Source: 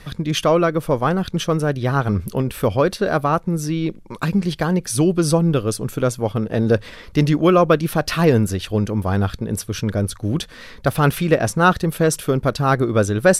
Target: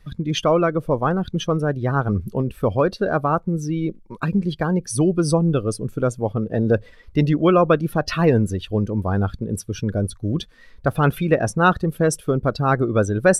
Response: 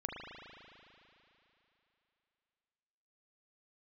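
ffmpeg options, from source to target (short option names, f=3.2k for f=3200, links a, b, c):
-af "afftdn=nr=15:nf=-28,volume=-1.5dB"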